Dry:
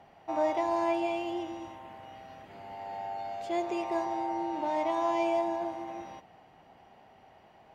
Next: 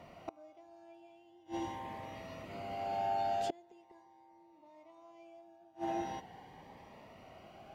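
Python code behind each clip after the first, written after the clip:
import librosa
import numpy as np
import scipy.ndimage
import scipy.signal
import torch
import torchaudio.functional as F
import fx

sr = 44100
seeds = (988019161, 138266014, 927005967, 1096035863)

y = fx.gate_flip(x, sr, shuts_db=-27.0, range_db=-32)
y = fx.notch_cascade(y, sr, direction='rising', hz=0.42)
y = y * 10.0 ** (5.5 / 20.0)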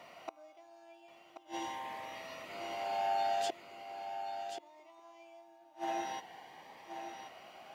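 y = fx.highpass(x, sr, hz=1200.0, slope=6)
y = y + 10.0 ** (-8.5 / 20.0) * np.pad(y, (int(1081 * sr / 1000.0), 0))[:len(y)]
y = y * 10.0 ** (6.5 / 20.0)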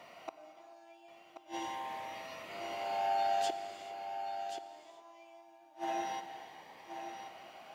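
y = fx.rev_gated(x, sr, seeds[0], gate_ms=460, shape='flat', drr_db=10.0)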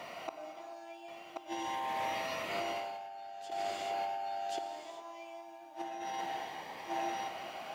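y = fx.over_compress(x, sr, threshold_db=-43.0, ratio=-1.0)
y = y * 10.0 ** (4.5 / 20.0)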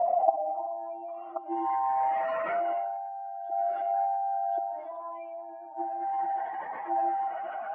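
y = fx.spec_expand(x, sr, power=2.0)
y = fx.filter_sweep_lowpass(y, sr, from_hz=720.0, to_hz=1500.0, start_s=0.12, end_s=1.74, q=7.6)
y = y * 10.0 ** (6.0 / 20.0)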